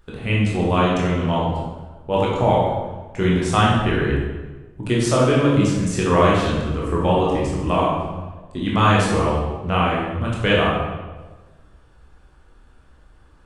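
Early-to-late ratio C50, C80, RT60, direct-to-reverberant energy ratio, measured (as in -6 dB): 0.5 dB, 3.5 dB, 1.3 s, -5.0 dB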